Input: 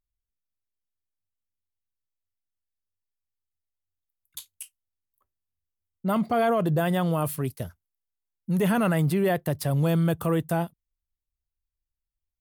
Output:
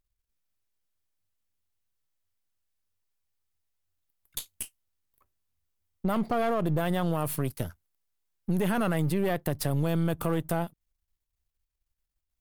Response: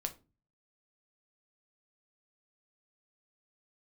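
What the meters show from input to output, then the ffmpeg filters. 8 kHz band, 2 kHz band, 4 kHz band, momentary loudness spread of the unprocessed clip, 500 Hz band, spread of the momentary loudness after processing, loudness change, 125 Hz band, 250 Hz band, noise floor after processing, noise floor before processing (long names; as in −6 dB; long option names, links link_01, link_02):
+0.5 dB, −3.5 dB, −1.5 dB, 20 LU, −4.0 dB, 12 LU, −4.0 dB, −4.0 dB, −3.5 dB, −84 dBFS, below −85 dBFS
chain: -filter_complex "[0:a]aeval=exprs='if(lt(val(0),0),0.447*val(0),val(0))':channel_layout=same,asplit=2[link_01][link_02];[link_02]alimiter=limit=-22dB:level=0:latency=1:release=60,volume=1dB[link_03];[link_01][link_03]amix=inputs=2:normalize=0,acompressor=threshold=-27dB:ratio=2"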